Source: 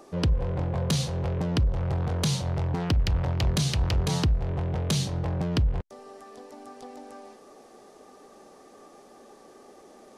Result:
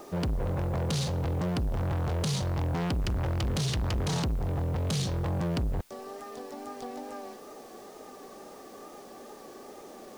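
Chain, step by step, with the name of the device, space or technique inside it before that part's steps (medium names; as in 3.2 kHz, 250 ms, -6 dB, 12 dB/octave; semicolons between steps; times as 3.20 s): compact cassette (saturation -31 dBFS, distortion -7 dB; low-pass 10 kHz; wow and flutter; white noise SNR 30 dB); trim +4.5 dB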